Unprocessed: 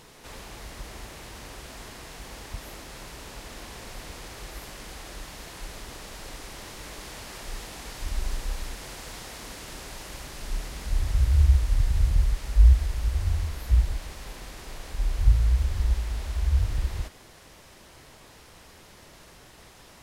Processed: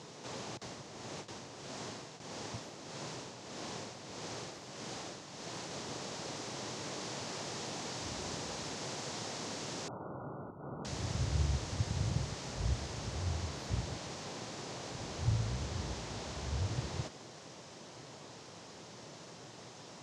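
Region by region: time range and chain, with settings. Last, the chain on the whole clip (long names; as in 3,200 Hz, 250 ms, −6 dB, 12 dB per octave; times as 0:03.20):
0:00.57–0:05.71: noise gate with hold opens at −32 dBFS, closes at −38 dBFS + amplitude tremolo 1.6 Hz, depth 55%
0:09.88–0:10.85: linear-phase brick-wall low-pass 1,500 Hz + downward compressor, threshold −33 dBFS
whole clip: elliptic band-pass filter 120–6,700 Hz, stop band 50 dB; parametric band 1,900 Hz −7.5 dB 1.7 octaves; level +3.5 dB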